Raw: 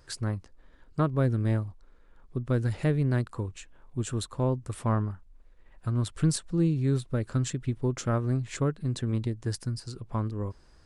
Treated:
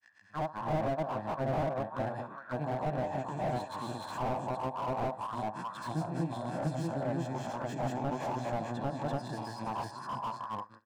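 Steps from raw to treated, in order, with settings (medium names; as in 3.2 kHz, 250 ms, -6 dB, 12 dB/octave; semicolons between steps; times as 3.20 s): reverse spectral sustain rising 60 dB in 0.65 s; high-pass 120 Hz 24 dB/octave; treble shelf 4 kHz +10.5 dB; band-passed feedback delay 580 ms, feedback 63%, band-pass 830 Hz, level -14 dB; granulator 134 ms, grains 25 per s, spray 656 ms; level rider gain up to 9 dB; bass shelf 480 Hz +5.5 dB; comb 1.2 ms, depth 67%; on a send: flutter echo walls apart 11.4 m, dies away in 0.21 s; on the sum: auto-wah 740–1800 Hz, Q 4.4, down, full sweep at -14.5 dBFS; slew-rate limiter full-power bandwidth 13 Hz; trim +4 dB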